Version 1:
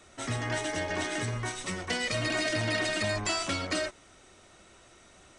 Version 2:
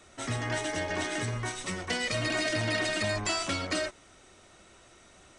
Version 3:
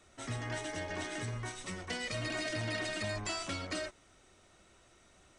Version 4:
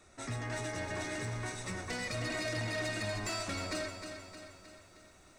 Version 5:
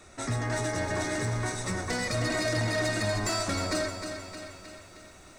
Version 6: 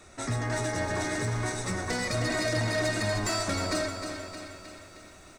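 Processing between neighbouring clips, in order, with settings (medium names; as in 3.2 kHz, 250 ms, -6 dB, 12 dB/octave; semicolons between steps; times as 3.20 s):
no audible change
bass shelf 120 Hz +4 dB; trim -7.5 dB
band-stop 3.1 kHz, Q 5.3; saturation -32.5 dBFS, distortion -17 dB; bit-crushed delay 310 ms, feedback 55%, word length 12-bit, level -8 dB; trim +2 dB
dynamic bell 2.7 kHz, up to -7 dB, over -57 dBFS, Q 2; trim +8.5 dB
speakerphone echo 380 ms, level -10 dB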